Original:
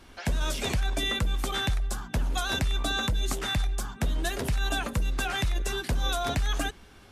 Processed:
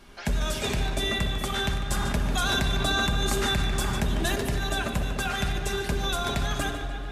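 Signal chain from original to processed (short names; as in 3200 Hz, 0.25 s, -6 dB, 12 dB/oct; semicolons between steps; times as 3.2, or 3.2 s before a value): tape echo 0.148 s, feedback 76%, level -8.5 dB, low-pass 4900 Hz; shoebox room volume 3400 m³, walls mixed, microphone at 1.3 m; 1.9–4.36 fast leveller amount 70%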